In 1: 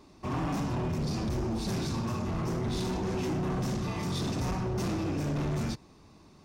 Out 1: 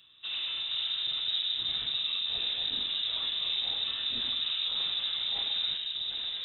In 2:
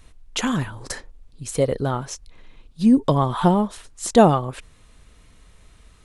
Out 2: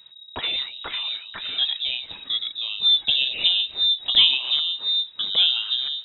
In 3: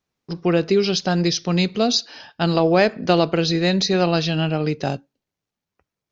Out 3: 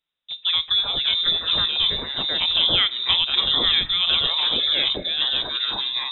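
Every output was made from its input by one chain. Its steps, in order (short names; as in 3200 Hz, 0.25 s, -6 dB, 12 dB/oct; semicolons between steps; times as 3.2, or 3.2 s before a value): echoes that change speed 0.416 s, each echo -3 st, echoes 2; inverted band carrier 3800 Hz; gain -4 dB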